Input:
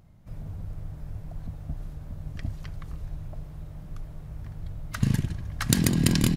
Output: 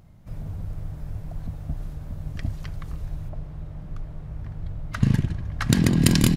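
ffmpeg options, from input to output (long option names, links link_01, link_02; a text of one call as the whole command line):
ffmpeg -i in.wav -filter_complex "[0:a]asettb=1/sr,asplit=3[link_01][link_02][link_03];[link_01]atrim=end=3.294[link_04];[link_02]atrim=start=3.29:end=6.02,asetpts=PTS-STARTPTS,afade=type=in:duration=0.004:curve=qsin,afade=type=out:start_time=2.726:duration=0.004:curve=qsin,lowpass=frequency=2900:poles=1[link_05];[link_03]atrim=start=6.016[link_06];[link_04][link_05]acrossfade=duration=0.004:curve1=hsin:curve2=qsin[link_07];[link_07][link_06]acrossfade=duration=0.004:curve1=qsin:curve2=hsin,volume=4dB" out.wav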